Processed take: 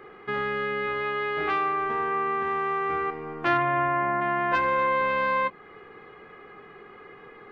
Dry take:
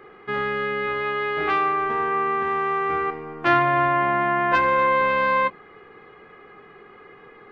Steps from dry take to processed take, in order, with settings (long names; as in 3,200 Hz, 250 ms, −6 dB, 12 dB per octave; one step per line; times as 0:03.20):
0:03.57–0:04.20: low-pass filter 3,600 Hz → 2,100 Hz 24 dB per octave
in parallel at +1.5 dB: downward compressor, threshold −29 dBFS, peak gain reduction 14.5 dB
on the sum: level −7 dB